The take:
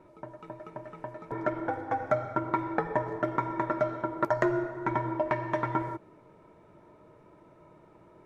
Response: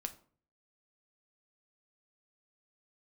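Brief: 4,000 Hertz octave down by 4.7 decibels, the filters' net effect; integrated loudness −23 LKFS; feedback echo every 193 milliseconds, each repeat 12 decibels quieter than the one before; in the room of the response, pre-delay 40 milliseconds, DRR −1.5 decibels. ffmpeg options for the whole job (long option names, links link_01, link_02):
-filter_complex "[0:a]equalizer=frequency=4000:width_type=o:gain=-6.5,aecho=1:1:193|386|579:0.251|0.0628|0.0157,asplit=2[link_01][link_02];[1:a]atrim=start_sample=2205,adelay=40[link_03];[link_02][link_03]afir=irnorm=-1:irlink=0,volume=3dB[link_04];[link_01][link_04]amix=inputs=2:normalize=0,volume=3.5dB"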